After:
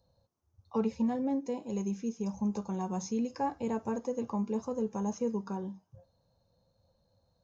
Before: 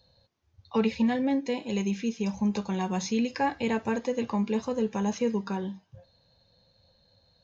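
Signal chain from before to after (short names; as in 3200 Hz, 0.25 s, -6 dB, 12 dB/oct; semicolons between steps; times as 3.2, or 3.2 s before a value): band shelf 2700 Hz -13 dB; gain -5 dB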